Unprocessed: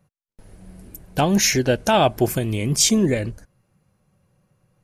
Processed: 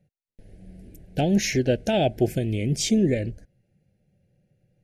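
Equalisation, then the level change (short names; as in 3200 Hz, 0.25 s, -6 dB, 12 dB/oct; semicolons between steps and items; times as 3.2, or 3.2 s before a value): Butterworth band-stop 1100 Hz, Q 1; LPF 2400 Hz 6 dB/oct; -2.0 dB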